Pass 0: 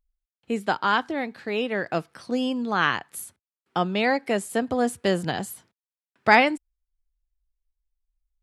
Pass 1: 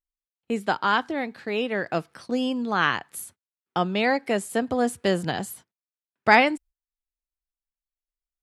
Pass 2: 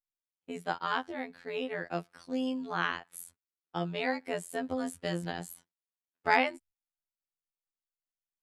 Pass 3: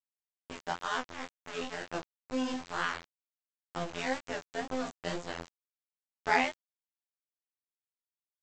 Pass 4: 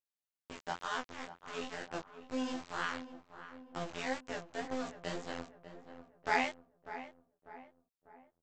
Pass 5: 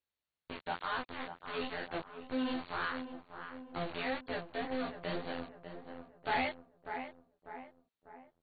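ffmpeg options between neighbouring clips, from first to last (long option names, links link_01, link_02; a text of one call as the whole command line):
ffmpeg -i in.wav -af "agate=range=-19dB:threshold=-46dB:ratio=16:detection=peak" out.wav
ffmpeg -i in.wav -af "afftfilt=real='hypot(re,im)*cos(PI*b)':imag='0':win_size=2048:overlap=0.75,volume=-6dB" out.wav
ffmpeg -i in.wav -af "aresample=16000,aeval=exprs='val(0)*gte(abs(val(0)),0.0211)':channel_layout=same,aresample=44100,flanger=delay=19:depth=5.3:speed=2.1,volume=1.5dB" out.wav
ffmpeg -i in.wav -filter_complex "[0:a]asplit=2[link_01][link_02];[link_02]adelay=596,lowpass=frequency=1500:poles=1,volume=-11.5dB,asplit=2[link_03][link_04];[link_04]adelay=596,lowpass=frequency=1500:poles=1,volume=0.5,asplit=2[link_05][link_06];[link_06]adelay=596,lowpass=frequency=1500:poles=1,volume=0.5,asplit=2[link_07][link_08];[link_08]adelay=596,lowpass=frequency=1500:poles=1,volume=0.5,asplit=2[link_09][link_10];[link_10]adelay=596,lowpass=frequency=1500:poles=1,volume=0.5[link_11];[link_01][link_03][link_05][link_07][link_09][link_11]amix=inputs=6:normalize=0,volume=-4dB" out.wav
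ffmpeg -i in.wav -af "asoftclip=type=tanh:threshold=-31.5dB,volume=4.5dB" -ar 32000 -c:a ac3 -b:a 32k out.ac3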